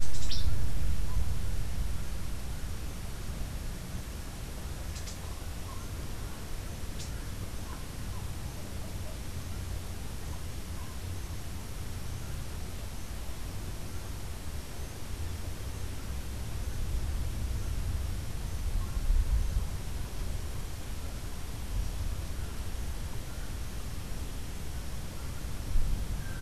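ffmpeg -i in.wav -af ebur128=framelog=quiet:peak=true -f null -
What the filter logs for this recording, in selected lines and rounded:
Integrated loudness:
  I:         -38.8 LUFS
  Threshold: -48.8 LUFS
Loudness range:
  LRA:         4.9 LU
  Threshold: -59.0 LUFS
  LRA low:   -40.8 LUFS
  LRA high:  -35.9 LUFS
True peak:
  Peak:      -13.0 dBFS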